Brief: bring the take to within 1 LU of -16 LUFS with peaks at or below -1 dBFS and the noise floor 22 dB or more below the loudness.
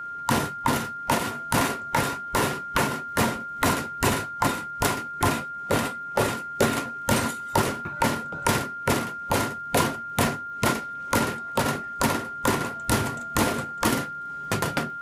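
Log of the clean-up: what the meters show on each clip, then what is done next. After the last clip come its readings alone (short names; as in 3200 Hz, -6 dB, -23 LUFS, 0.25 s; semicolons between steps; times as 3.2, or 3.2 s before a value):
ticks 32/s; steady tone 1400 Hz; tone level -32 dBFS; loudness -26.0 LUFS; peak -9.0 dBFS; loudness target -16.0 LUFS
-> de-click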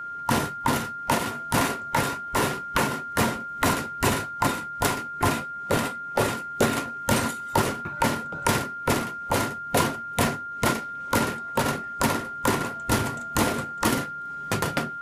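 ticks 0.67/s; steady tone 1400 Hz; tone level -32 dBFS
-> notch 1400 Hz, Q 30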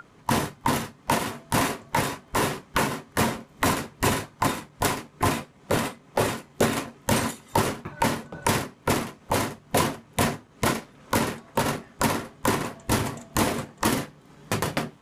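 steady tone none; loudness -27.0 LUFS; peak -9.5 dBFS; loudness target -16.0 LUFS
-> gain +11 dB; limiter -1 dBFS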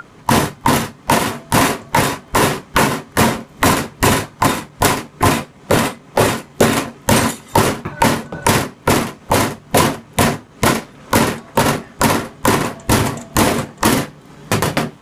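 loudness -16.5 LUFS; peak -1.0 dBFS; noise floor -44 dBFS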